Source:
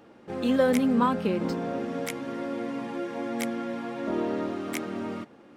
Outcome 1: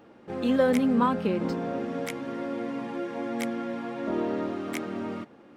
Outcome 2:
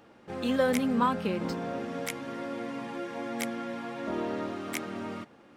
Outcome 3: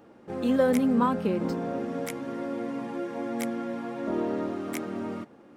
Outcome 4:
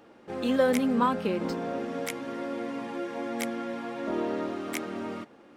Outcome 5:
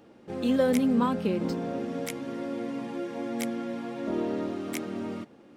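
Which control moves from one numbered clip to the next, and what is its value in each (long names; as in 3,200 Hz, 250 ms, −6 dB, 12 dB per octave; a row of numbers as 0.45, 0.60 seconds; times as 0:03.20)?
parametric band, centre frequency: 13,000, 320, 3,300, 130, 1,300 Hertz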